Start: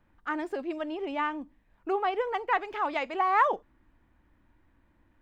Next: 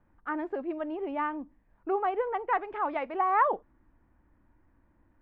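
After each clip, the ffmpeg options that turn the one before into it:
ffmpeg -i in.wav -af "lowpass=1600" out.wav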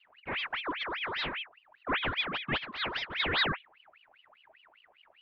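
ffmpeg -i in.wav -af "lowshelf=frequency=370:gain=9,aeval=exprs='val(0)*sin(2*PI*1800*n/s+1800*0.65/5*sin(2*PI*5*n/s))':channel_layout=same,volume=-3dB" out.wav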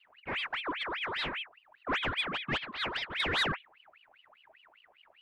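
ffmpeg -i in.wav -af "asoftclip=type=tanh:threshold=-20dB" out.wav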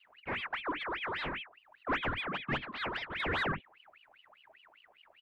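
ffmpeg -i in.wav -filter_complex "[0:a]acrossover=split=360|2300[link_01][link_02][link_03];[link_01]aecho=1:1:49|69:0.422|0.178[link_04];[link_03]acompressor=threshold=-47dB:ratio=6[link_05];[link_04][link_02][link_05]amix=inputs=3:normalize=0" out.wav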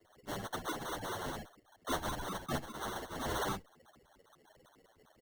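ffmpeg -i in.wav -filter_complex "[0:a]acrusher=samples=18:mix=1:aa=0.000001,asplit=2[link_01][link_02];[link_02]adelay=8.9,afreqshift=-1.6[link_03];[link_01][link_03]amix=inputs=2:normalize=1" out.wav

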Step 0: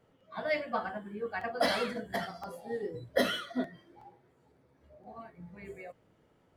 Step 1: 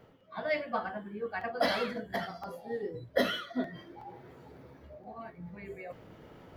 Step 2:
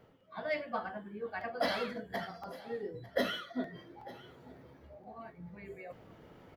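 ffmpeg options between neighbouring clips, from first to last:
ffmpeg -i in.wav -af "equalizer=frequency=8600:width_type=o:width=0.63:gain=-11.5,areverse,acompressor=mode=upward:threshold=-38dB:ratio=2.5,areverse" out.wav
ffmpeg -i in.wav -filter_complex "[0:a]asplit=2[link_01][link_02];[link_02]volume=21.5dB,asoftclip=hard,volume=-21.5dB,volume=-9.5dB[link_03];[link_01][link_03]amix=inputs=2:normalize=0,aecho=1:1:899:0.106,volume=-6dB" out.wav

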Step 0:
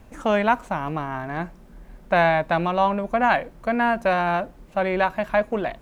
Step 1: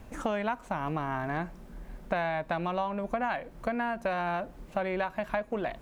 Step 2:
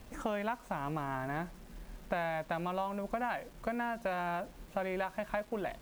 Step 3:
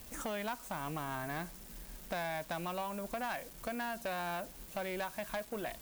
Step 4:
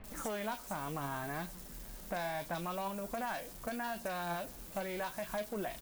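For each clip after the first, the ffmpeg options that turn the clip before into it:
ffmpeg -i in.wav -af "acompressor=threshold=-28dB:ratio=6" out.wav
ffmpeg -i in.wav -af "acrusher=bits=8:mix=0:aa=0.000001,volume=-4.5dB" out.wav
ffmpeg -i in.wav -af "asoftclip=type=tanh:threshold=-28.5dB,crystalizer=i=3.5:c=0,volume=-2.5dB" out.wav
ffmpeg -i in.wav -filter_complex "[0:a]aeval=exprs='val(0)+0.5*0.00266*sgn(val(0))':channel_layout=same,acrossover=split=2500[link_01][link_02];[link_02]adelay=40[link_03];[link_01][link_03]amix=inputs=2:normalize=0,flanger=delay=4.7:depth=5.4:regen=71:speed=0.73:shape=sinusoidal,volume=4dB" out.wav

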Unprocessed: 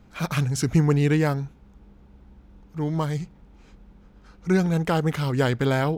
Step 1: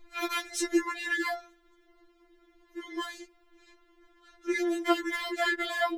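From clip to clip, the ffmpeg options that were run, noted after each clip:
ffmpeg -i in.wav -af "superequalizer=11b=2.24:13b=1.58,afftfilt=real='re*4*eq(mod(b,16),0)':imag='im*4*eq(mod(b,16),0)':win_size=2048:overlap=0.75" out.wav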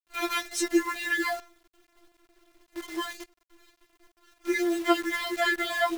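ffmpeg -i in.wav -af "acrusher=bits=8:dc=4:mix=0:aa=0.000001,volume=2.5dB" out.wav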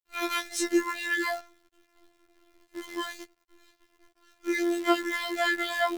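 ffmpeg -i in.wav -af "afftfilt=real='hypot(re,im)*cos(PI*b)':imag='0':win_size=2048:overlap=0.75" out.wav

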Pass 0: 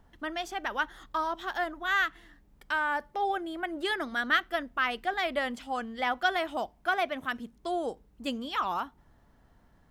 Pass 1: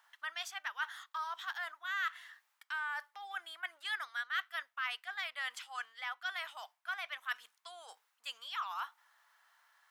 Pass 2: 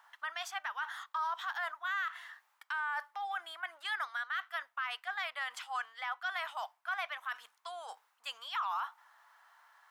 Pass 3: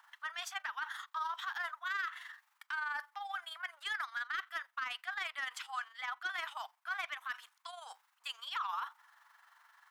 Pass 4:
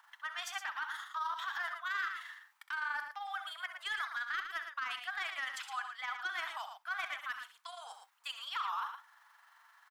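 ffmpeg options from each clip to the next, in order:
ffmpeg -i in.wav -af "areverse,acompressor=threshold=-37dB:ratio=10,areverse,highpass=frequency=1100:width=0.5412,highpass=frequency=1100:width=1.3066,volume=4.5dB" out.wav
ffmpeg -i in.wav -af "equalizer=frequency=890:width_type=o:width=1.8:gain=9.5,alimiter=level_in=3.5dB:limit=-24dB:level=0:latency=1:release=36,volume=-3.5dB" out.wav
ffmpeg -i in.wav -af "tremolo=f=23:d=0.519,highpass=1000,asoftclip=type=tanh:threshold=-31.5dB,volume=3dB" out.wav
ffmpeg -i in.wav -af "aecho=1:1:64.14|113.7:0.282|0.398" out.wav

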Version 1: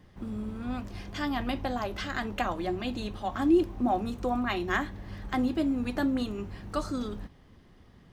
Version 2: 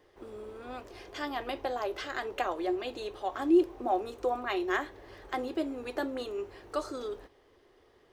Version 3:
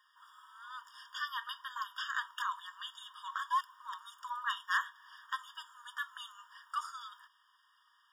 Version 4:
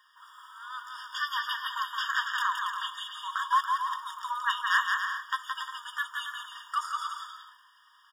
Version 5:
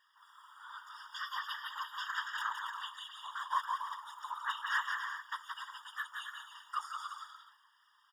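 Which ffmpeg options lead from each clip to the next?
ffmpeg -i in.wav -af "lowshelf=frequency=280:width_type=q:width=3:gain=-12,volume=-3dB" out.wav
ffmpeg -i in.wav -af "aeval=exprs='0.1*(abs(mod(val(0)/0.1+3,4)-2)-1)':channel_layout=same,afftfilt=real='re*eq(mod(floor(b*sr/1024/940),2),1)':imag='im*eq(mod(floor(b*sr/1024/940),2),1)':win_size=1024:overlap=0.75,volume=2.5dB" out.wav
ffmpeg -i in.wav -af "aecho=1:1:170|280.5|352.3|399|429.4:0.631|0.398|0.251|0.158|0.1,volume=6.5dB" out.wav
ffmpeg -i in.wav -af "afftfilt=real='hypot(re,im)*cos(2*PI*random(0))':imag='hypot(re,im)*sin(2*PI*random(1))':win_size=512:overlap=0.75,volume=-2.5dB" out.wav

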